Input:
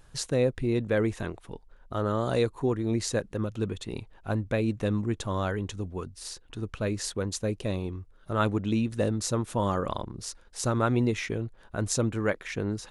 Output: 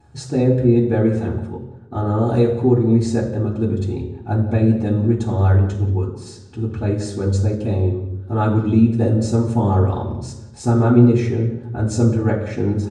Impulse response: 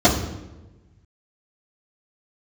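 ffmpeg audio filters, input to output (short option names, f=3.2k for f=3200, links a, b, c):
-filter_complex "[0:a]asplit=2[a][b];[b]adelay=180,highpass=300,lowpass=3.4k,asoftclip=type=hard:threshold=-20dB,volume=-15dB[c];[a][c]amix=inputs=2:normalize=0[d];[1:a]atrim=start_sample=2205,asetrate=52920,aresample=44100[e];[d][e]afir=irnorm=-1:irlink=0,volume=-18dB"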